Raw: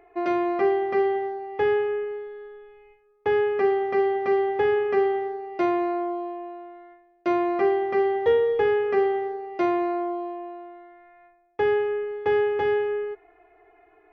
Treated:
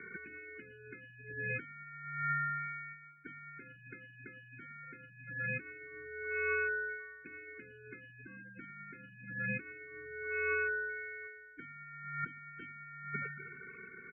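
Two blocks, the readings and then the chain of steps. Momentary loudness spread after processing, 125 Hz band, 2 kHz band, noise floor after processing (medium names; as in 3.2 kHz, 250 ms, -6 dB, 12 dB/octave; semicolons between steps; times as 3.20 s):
18 LU, no reading, -2.0 dB, -57 dBFS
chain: spectral peaks clipped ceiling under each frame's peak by 26 dB; comb 2.9 ms, depth 58%; echo whose repeats swap between lows and highs 110 ms, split 1.9 kHz, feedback 54%, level -9 dB; dynamic bell 1.1 kHz, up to -6 dB, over -35 dBFS, Q 1.6; peak limiter -17 dBFS, peak gain reduction 8.5 dB; compressor with a negative ratio -35 dBFS, ratio -0.5; vowel filter e; spectral gate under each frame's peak -15 dB strong; mistuned SSB -270 Hz 500–3400 Hz; trim +9 dB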